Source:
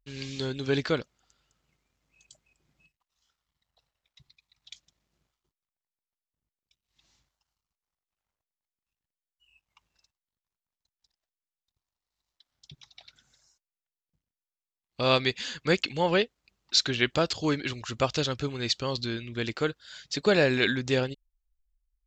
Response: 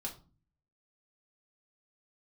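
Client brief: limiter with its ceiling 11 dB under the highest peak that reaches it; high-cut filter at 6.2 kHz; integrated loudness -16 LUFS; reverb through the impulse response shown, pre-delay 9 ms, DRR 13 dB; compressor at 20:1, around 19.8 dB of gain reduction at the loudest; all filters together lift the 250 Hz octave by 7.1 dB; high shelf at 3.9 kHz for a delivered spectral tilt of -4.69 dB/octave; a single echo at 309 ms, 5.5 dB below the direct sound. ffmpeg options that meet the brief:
-filter_complex "[0:a]lowpass=6200,equalizer=f=250:t=o:g=9,highshelf=f=3900:g=7,acompressor=threshold=0.02:ratio=20,alimiter=level_in=2.51:limit=0.0631:level=0:latency=1,volume=0.398,aecho=1:1:309:0.531,asplit=2[s0][s1];[1:a]atrim=start_sample=2205,adelay=9[s2];[s1][s2]afir=irnorm=-1:irlink=0,volume=0.237[s3];[s0][s3]amix=inputs=2:normalize=0,volume=20"

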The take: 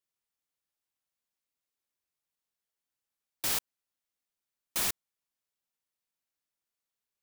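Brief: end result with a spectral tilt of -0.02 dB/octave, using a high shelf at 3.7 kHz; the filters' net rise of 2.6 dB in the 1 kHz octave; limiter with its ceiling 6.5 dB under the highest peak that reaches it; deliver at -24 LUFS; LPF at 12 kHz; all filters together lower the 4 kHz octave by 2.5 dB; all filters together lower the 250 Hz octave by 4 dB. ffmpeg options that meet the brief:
-af "lowpass=12000,equalizer=f=250:t=o:g=-6,equalizer=f=1000:t=o:g=3.5,highshelf=f=3700:g=5,equalizer=f=4000:t=o:g=-7,volume=4.22,alimiter=limit=0.266:level=0:latency=1"

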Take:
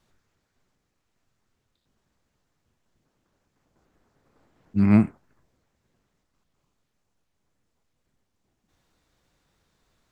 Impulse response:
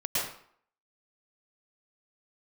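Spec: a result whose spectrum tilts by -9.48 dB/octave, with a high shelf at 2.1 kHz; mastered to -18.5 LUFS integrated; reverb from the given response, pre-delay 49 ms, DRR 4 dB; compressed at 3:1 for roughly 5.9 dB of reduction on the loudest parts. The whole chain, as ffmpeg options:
-filter_complex "[0:a]highshelf=f=2100:g=-3.5,acompressor=threshold=0.112:ratio=3,asplit=2[s0][s1];[1:a]atrim=start_sample=2205,adelay=49[s2];[s1][s2]afir=irnorm=-1:irlink=0,volume=0.237[s3];[s0][s3]amix=inputs=2:normalize=0,volume=2.24"

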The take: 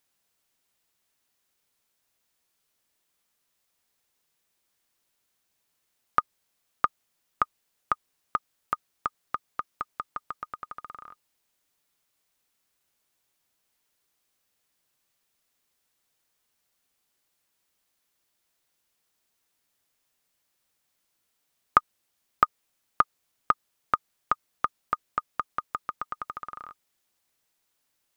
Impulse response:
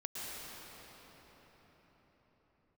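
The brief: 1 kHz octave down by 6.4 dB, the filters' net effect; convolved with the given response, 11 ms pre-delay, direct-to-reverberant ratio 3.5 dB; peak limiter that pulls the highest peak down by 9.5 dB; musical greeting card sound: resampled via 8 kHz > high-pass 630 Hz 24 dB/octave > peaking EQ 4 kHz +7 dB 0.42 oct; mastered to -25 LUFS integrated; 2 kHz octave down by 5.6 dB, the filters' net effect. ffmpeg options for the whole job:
-filter_complex "[0:a]equalizer=f=1000:t=o:g=-6.5,equalizer=f=2000:t=o:g=-5,alimiter=limit=0.158:level=0:latency=1,asplit=2[s0][s1];[1:a]atrim=start_sample=2205,adelay=11[s2];[s1][s2]afir=irnorm=-1:irlink=0,volume=0.531[s3];[s0][s3]amix=inputs=2:normalize=0,aresample=8000,aresample=44100,highpass=f=630:w=0.5412,highpass=f=630:w=1.3066,equalizer=f=4000:t=o:w=0.42:g=7,volume=6.68"

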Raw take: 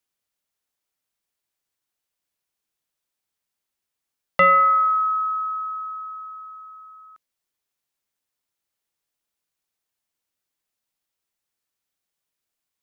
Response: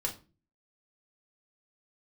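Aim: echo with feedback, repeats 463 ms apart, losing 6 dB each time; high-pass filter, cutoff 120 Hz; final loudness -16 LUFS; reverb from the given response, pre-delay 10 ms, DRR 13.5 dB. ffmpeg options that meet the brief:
-filter_complex "[0:a]highpass=120,aecho=1:1:463|926|1389|1852|2315|2778:0.501|0.251|0.125|0.0626|0.0313|0.0157,asplit=2[s0][s1];[1:a]atrim=start_sample=2205,adelay=10[s2];[s1][s2]afir=irnorm=-1:irlink=0,volume=0.15[s3];[s0][s3]amix=inputs=2:normalize=0,volume=1.33"

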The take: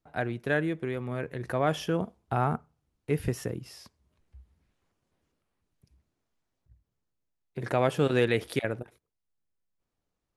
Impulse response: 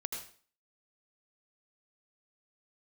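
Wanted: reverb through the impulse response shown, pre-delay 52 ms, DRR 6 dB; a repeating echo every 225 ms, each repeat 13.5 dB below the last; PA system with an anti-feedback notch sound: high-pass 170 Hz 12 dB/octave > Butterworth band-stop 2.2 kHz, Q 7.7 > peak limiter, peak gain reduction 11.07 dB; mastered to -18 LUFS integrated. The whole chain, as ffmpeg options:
-filter_complex "[0:a]aecho=1:1:225|450:0.211|0.0444,asplit=2[s0][s1];[1:a]atrim=start_sample=2205,adelay=52[s2];[s1][s2]afir=irnorm=-1:irlink=0,volume=0.447[s3];[s0][s3]amix=inputs=2:normalize=0,highpass=170,asuperstop=centerf=2200:order=8:qfactor=7.7,volume=7.08,alimiter=limit=0.501:level=0:latency=1"

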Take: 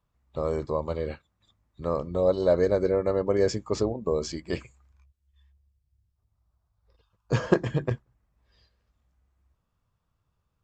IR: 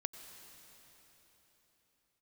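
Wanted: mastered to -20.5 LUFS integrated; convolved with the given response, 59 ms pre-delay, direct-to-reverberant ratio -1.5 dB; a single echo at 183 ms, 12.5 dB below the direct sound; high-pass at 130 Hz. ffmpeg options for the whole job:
-filter_complex "[0:a]highpass=130,aecho=1:1:183:0.237,asplit=2[s0][s1];[1:a]atrim=start_sample=2205,adelay=59[s2];[s1][s2]afir=irnorm=-1:irlink=0,volume=1.33[s3];[s0][s3]amix=inputs=2:normalize=0,volume=1.5"

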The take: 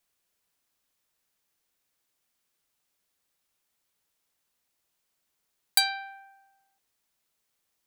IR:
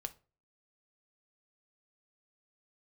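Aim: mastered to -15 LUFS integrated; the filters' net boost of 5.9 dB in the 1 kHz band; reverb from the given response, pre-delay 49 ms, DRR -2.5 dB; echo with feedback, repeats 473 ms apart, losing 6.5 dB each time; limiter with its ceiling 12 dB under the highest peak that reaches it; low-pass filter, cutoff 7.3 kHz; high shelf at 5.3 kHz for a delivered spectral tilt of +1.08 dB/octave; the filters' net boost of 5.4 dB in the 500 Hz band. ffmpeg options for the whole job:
-filter_complex "[0:a]lowpass=7300,equalizer=f=500:t=o:g=4,equalizer=f=1000:t=o:g=6.5,highshelf=f=5300:g=6,alimiter=limit=0.119:level=0:latency=1,aecho=1:1:473|946|1419|1892|2365|2838:0.473|0.222|0.105|0.0491|0.0231|0.0109,asplit=2[s0][s1];[1:a]atrim=start_sample=2205,adelay=49[s2];[s1][s2]afir=irnorm=-1:irlink=0,volume=1.78[s3];[s0][s3]amix=inputs=2:normalize=0,volume=5.01"

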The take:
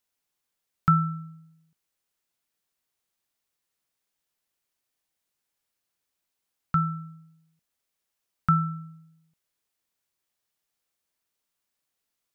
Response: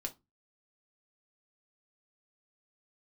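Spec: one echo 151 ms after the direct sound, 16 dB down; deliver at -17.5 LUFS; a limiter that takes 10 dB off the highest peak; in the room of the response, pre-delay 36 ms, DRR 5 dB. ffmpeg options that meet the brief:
-filter_complex "[0:a]alimiter=limit=0.112:level=0:latency=1,aecho=1:1:151:0.158,asplit=2[s0][s1];[1:a]atrim=start_sample=2205,adelay=36[s2];[s1][s2]afir=irnorm=-1:irlink=0,volume=0.631[s3];[s0][s3]amix=inputs=2:normalize=0,volume=3.98"

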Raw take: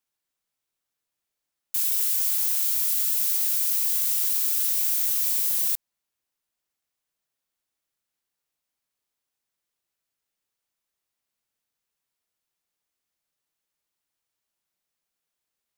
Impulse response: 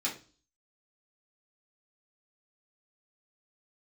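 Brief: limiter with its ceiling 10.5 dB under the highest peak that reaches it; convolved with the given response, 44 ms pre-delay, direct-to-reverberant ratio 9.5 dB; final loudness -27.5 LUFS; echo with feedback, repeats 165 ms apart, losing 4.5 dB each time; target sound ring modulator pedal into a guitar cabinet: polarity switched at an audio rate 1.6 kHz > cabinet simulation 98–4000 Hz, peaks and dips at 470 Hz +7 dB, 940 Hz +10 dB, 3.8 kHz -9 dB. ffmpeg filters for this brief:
-filter_complex "[0:a]alimiter=limit=0.0891:level=0:latency=1,aecho=1:1:165|330|495|660|825|990|1155|1320|1485:0.596|0.357|0.214|0.129|0.0772|0.0463|0.0278|0.0167|0.01,asplit=2[s0][s1];[1:a]atrim=start_sample=2205,adelay=44[s2];[s1][s2]afir=irnorm=-1:irlink=0,volume=0.188[s3];[s0][s3]amix=inputs=2:normalize=0,aeval=exprs='val(0)*sgn(sin(2*PI*1600*n/s))':c=same,highpass=98,equalizer=f=470:t=q:w=4:g=7,equalizer=f=940:t=q:w=4:g=10,equalizer=f=3800:t=q:w=4:g=-9,lowpass=f=4000:w=0.5412,lowpass=f=4000:w=1.3066,volume=5.62"

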